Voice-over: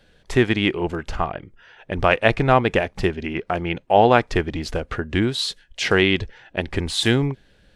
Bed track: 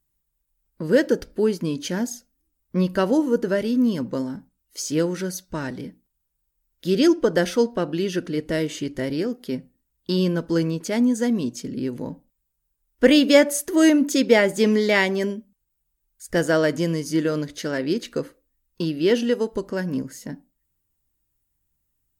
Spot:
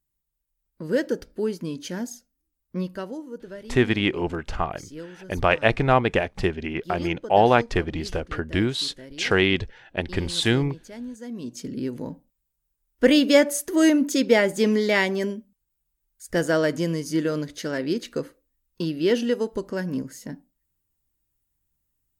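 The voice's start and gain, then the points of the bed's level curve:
3.40 s, -2.5 dB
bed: 2.73 s -5.5 dB
3.20 s -16.5 dB
11.22 s -16.5 dB
11.62 s -2 dB

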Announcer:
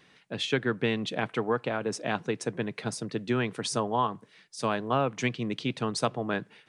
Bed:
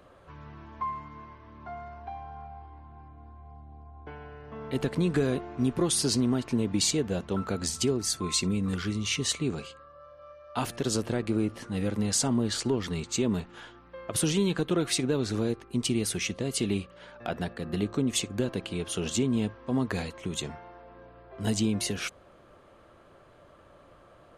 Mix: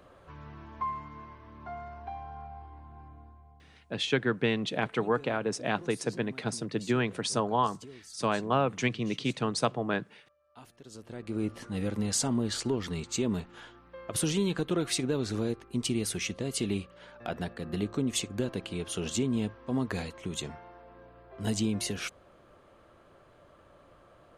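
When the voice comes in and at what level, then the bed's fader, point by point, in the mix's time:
3.60 s, 0.0 dB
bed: 3.14 s -0.5 dB
4.09 s -21.5 dB
10.88 s -21.5 dB
11.46 s -2.5 dB

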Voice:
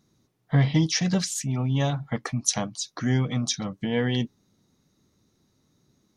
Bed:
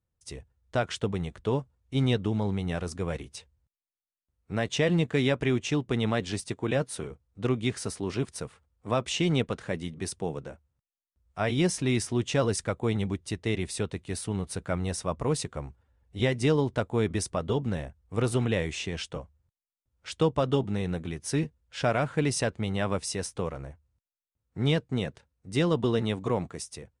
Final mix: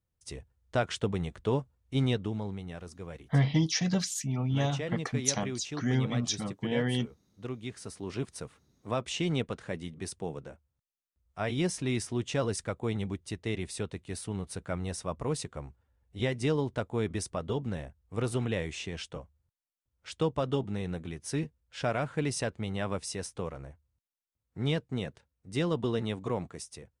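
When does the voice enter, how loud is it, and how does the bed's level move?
2.80 s, -4.5 dB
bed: 1.93 s -1 dB
2.73 s -11 dB
7.71 s -11 dB
8.20 s -4.5 dB

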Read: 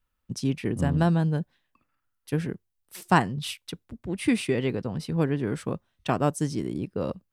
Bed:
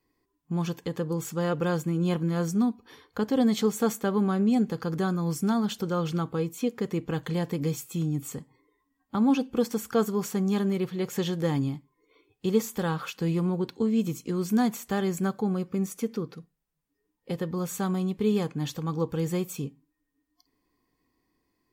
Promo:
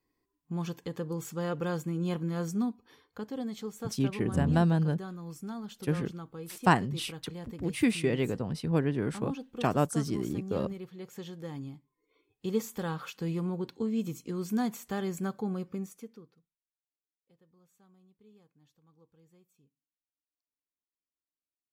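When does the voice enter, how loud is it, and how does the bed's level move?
3.55 s, -2.5 dB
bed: 2.60 s -5.5 dB
3.50 s -14 dB
11.49 s -14 dB
12.56 s -6 dB
15.70 s -6 dB
16.75 s -35 dB

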